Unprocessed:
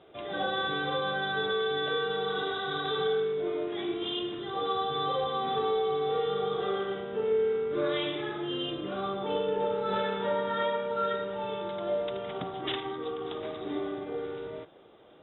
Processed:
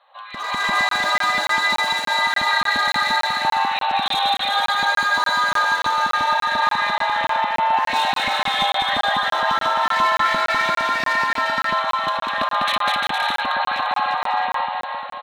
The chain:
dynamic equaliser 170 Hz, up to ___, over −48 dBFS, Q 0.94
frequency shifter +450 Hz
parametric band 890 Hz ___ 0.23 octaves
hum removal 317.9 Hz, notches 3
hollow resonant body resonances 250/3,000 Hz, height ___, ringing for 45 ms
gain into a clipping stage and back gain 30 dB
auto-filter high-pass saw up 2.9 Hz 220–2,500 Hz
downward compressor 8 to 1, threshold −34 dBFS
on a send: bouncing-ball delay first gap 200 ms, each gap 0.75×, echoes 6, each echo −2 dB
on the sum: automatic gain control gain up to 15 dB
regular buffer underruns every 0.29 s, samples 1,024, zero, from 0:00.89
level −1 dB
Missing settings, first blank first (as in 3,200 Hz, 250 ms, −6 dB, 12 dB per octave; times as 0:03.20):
−6 dB, −8 dB, 9 dB